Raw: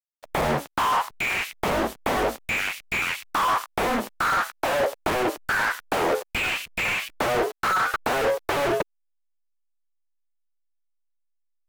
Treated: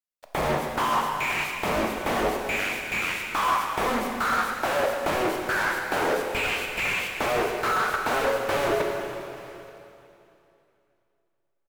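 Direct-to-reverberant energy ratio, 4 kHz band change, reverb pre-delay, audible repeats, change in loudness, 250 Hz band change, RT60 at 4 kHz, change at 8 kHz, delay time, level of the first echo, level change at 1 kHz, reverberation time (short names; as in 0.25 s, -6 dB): 2.0 dB, -1.0 dB, 17 ms, 1, -1.0 dB, -0.5 dB, 2.8 s, -1.0 dB, 0.879 s, -22.5 dB, -1.0 dB, 2.9 s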